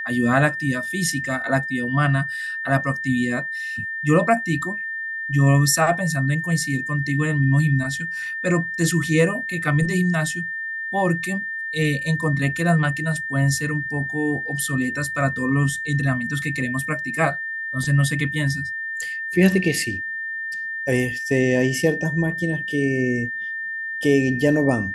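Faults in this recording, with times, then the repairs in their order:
tone 1800 Hz -26 dBFS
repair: notch 1800 Hz, Q 30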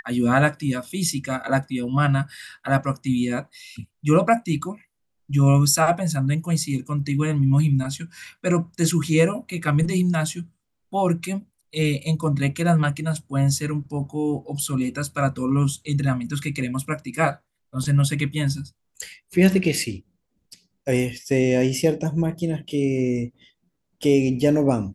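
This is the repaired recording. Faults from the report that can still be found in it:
none

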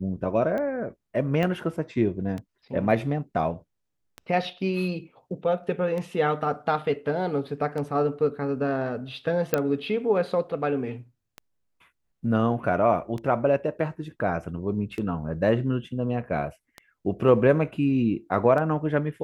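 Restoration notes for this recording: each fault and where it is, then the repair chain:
tick 33 1/3 rpm -21 dBFS
1.43 pop -16 dBFS
9.54 pop -8 dBFS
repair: de-click

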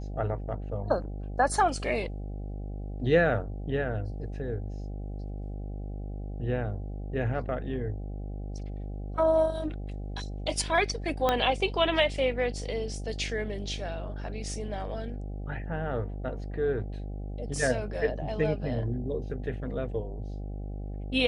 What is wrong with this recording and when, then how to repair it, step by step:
buzz 50 Hz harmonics 16 -36 dBFS
11.29 pop -11 dBFS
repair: de-click; de-hum 50 Hz, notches 16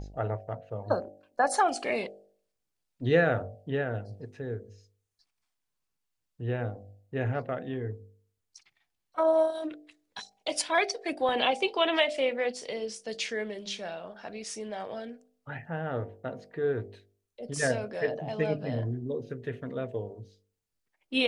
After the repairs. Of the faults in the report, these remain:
11.29 pop

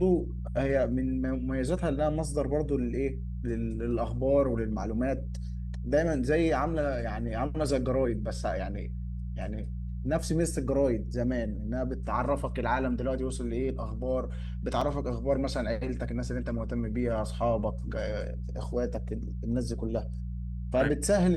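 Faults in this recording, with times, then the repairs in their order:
hum 60 Hz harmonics 3 -35 dBFS
14.81 gap 3.8 ms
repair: de-hum 60 Hz, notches 3; interpolate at 14.81, 3.8 ms

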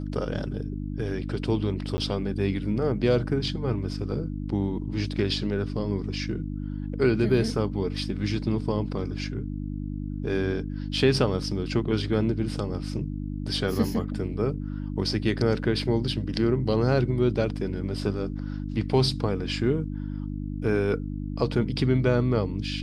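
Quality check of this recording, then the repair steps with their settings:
hum 50 Hz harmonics 6 -32 dBFS
1.97–1.98 gap 10 ms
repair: de-hum 50 Hz, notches 6; interpolate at 1.97, 10 ms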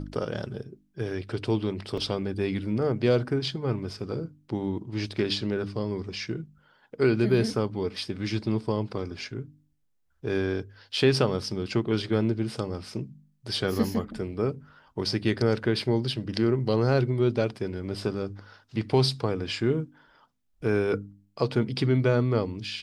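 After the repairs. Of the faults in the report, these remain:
none

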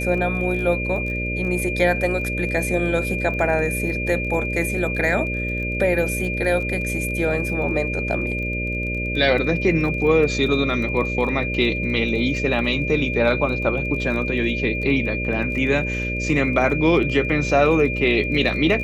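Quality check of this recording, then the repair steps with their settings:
buzz 60 Hz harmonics 10 -27 dBFS
crackle 22/s -30 dBFS
tone 2400 Hz -26 dBFS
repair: de-click; de-hum 60 Hz, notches 10; notch 2400 Hz, Q 30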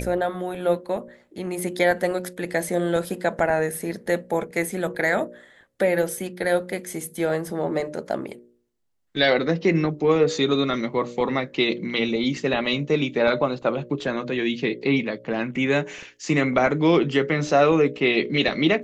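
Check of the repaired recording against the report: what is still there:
none

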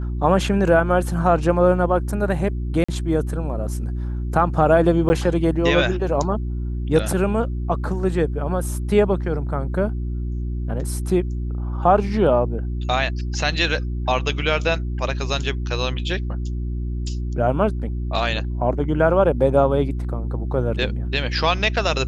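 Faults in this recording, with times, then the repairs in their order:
hum 60 Hz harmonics 6 -25 dBFS
2.84–2.88 gap 45 ms
5.09–5.1 gap 10 ms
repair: de-hum 60 Hz, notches 6; interpolate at 2.84, 45 ms; interpolate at 5.09, 10 ms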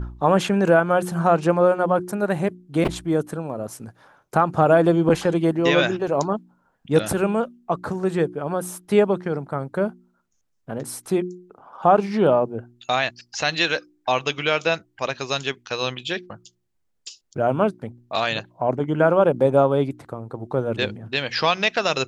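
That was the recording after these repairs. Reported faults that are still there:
none

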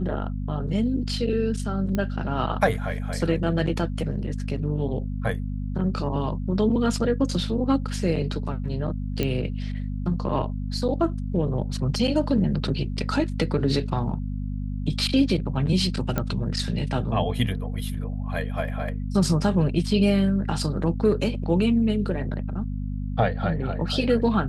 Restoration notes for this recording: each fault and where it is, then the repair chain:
hum 50 Hz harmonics 5 -29 dBFS
1.95 pop -14 dBFS
9.23 pop -12 dBFS
16.18 pop -11 dBFS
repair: de-click; de-hum 50 Hz, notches 5

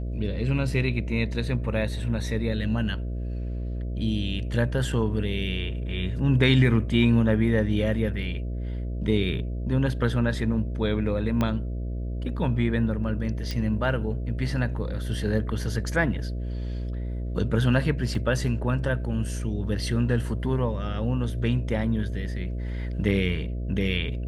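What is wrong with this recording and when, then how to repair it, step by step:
buzz 60 Hz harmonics 11 -30 dBFS
11.41 pop -13 dBFS
13.51 pop
18.15 gap 2.1 ms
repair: de-click; de-hum 60 Hz, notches 11; interpolate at 18.15, 2.1 ms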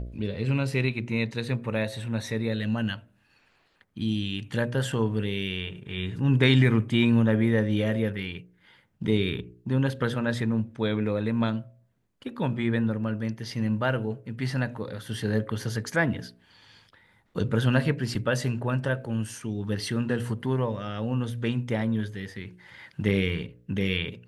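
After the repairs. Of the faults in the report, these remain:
11.41 pop
13.51 pop

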